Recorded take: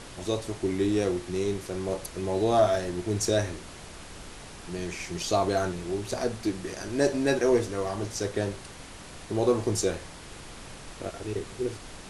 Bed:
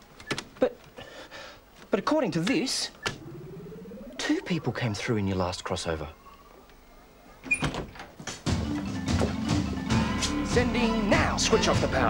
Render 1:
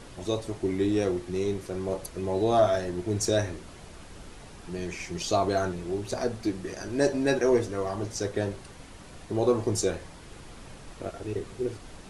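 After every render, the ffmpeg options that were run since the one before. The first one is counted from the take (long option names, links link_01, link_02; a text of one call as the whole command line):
ffmpeg -i in.wav -af "afftdn=noise_reduction=6:noise_floor=-44" out.wav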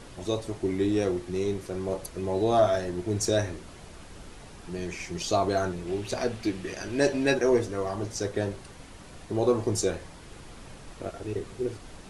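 ffmpeg -i in.wav -filter_complex "[0:a]asettb=1/sr,asplit=3[link_01][link_02][link_03];[link_01]atrim=end=5.874[link_04];[link_02]atrim=start=5.87:end=7.34,asetpts=PTS-STARTPTS,afade=type=in:duration=0.004:curve=qsin,afade=type=out:start_time=1.466:duration=0.004:curve=qsin,equalizer=frequency=2700:width_type=o:width=1.1:gain=7[link_05];[link_03]atrim=start=7.336[link_06];[link_04][link_05]acrossfade=duration=0.004:curve1=hsin:curve2=qsin[link_07];[link_07][link_06]acrossfade=duration=0.004:curve1=qsin:curve2=hsin" out.wav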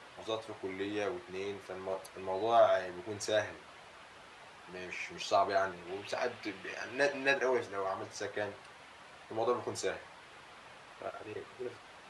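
ffmpeg -i in.wav -filter_complex "[0:a]highpass=85,acrossover=split=590 3700:gain=0.141 1 0.2[link_01][link_02][link_03];[link_01][link_02][link_03]amix=inputs=3:normalize=0" out.wav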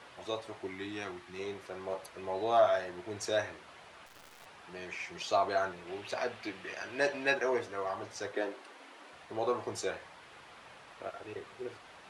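ffmpeg -i in.wav -filter_complex "[0:a]asettb=1/sr,asplit=3[link_01][link_02][link_03];[link_01]atrim=end=0.674[link_04];[link_02]atrim=start=0.67:end=1.39,asetpts=PTS-STARTPTS,afade=type=in:duration=0.004:curve=qsin,afade=type=out:start_time=0.716:duration=0.004:curve=qsin,equalizer=frequency=510:width=2.4:gain=-14[link_05];[link_03]atrim=start=1.386[link_06];[link_04][link_05]acrossfade=duration=0.004:curve1=hsin:curve2=qsin[link_07];[link_07][link_06]acrossfade=duration=0.004:curve1=qsin:curve2=hsin,asettb=1/sr,asplit=3[link_08][link_09][link_10];[link_08]atrim=end=4.064[link_11];[link_09]atrim=start=4.06:end=4.46,asetpts=PTS-STARTPTS,afade=type=in:duration=0.004:curve=qsin,afade=type=out:start_time=0.396:duration=0.004:curve=qsin,acrusher=bits=9:dc=4:mix=0:aa=0.000001[link_12];[link_10]atrim=start=4.456[link_13];[link_11][link_12]acrossfade=duration=0.004:curve1=hsin:curve2=qsin[link_14];[link_14][link_13]acrossfade=duration=0.004:curve1=qsin:curve2=hsin,asettb=1/sr,asplit=3[link_15][link_16][link_17];[link_15]atrim=end=8.334[link_18];[link_16]atrim=start=8.33:end=9.13,asetpts=PTS-STARTPTS,afade=type=in:duration=0.004:curve=qsin,afade=type=out:start_time=0.796:duration=0.004:curve=qsin,lowshelf=frequency=190:width_type=q:width=3:gain=-14[link_19];[link_17]atrim=start=9.126[link_20];[link_18][link_19]acrossfade=duration=0.004:curve1=hsin:curve2=qsin[link_21];[link_21][link_20]acrossfade=duration=0.004:curve1=qsin:curve2=hsin" out.wav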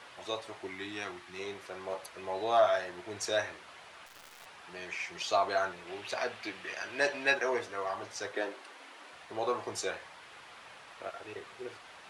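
ffmpeg -i in.wav -af "tiltshelf=frequency=640:gain=-3.5" out.wav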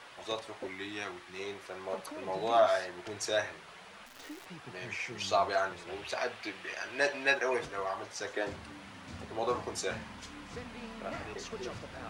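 ffmpeg -i in.wav -i bed.wav -filter_complex "[1:a]volume=-20.5dB[link_01];[0:a][link_01]amix=inputs=2:normalize=0" out.wav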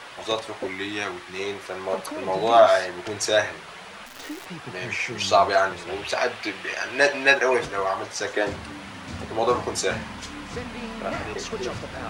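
ffmpeg -i in.wav -af "volume=10.5dB" out.wav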